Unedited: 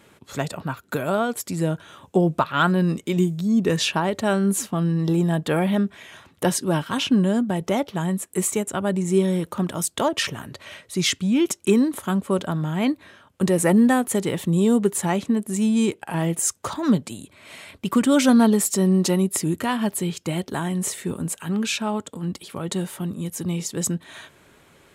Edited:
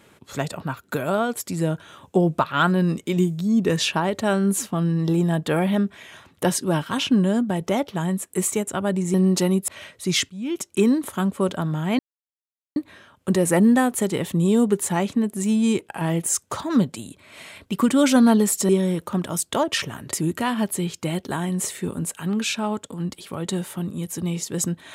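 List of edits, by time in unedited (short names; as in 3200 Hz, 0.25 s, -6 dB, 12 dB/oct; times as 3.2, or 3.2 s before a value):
9.14–10.58 swap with 18.82–19.36
11.2–11.78 fade in, from -18 dB
12.89 insert silence 0.77 s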